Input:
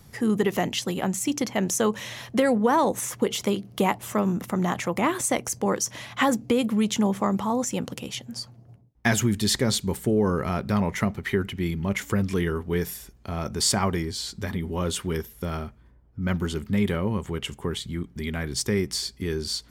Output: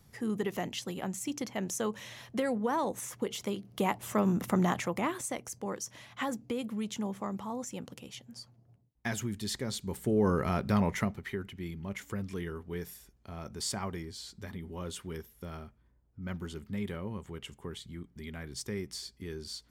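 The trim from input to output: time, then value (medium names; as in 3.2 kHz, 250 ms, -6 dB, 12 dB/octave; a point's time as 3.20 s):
3.53 s -10 dB
4.53 s -1 dB
5.34 s -12.5 dB
9.74 s -12.5 dB
10.26 s -3.5 dB
10.89 s -3.5 dB
11.36 s -12.5 dB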